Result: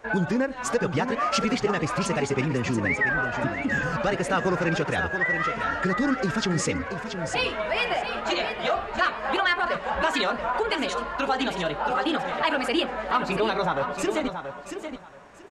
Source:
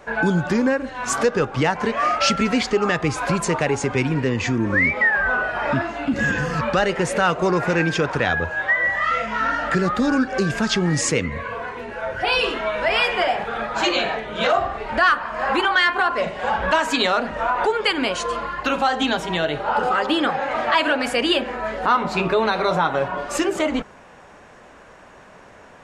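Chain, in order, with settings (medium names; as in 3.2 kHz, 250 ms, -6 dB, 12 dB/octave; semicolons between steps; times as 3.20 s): time stretch by phase-locked vocoder 0.6×; on a send: feedback delay 680 ms, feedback 20%, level -8.5 dB; on the sum: trim -4.5 dB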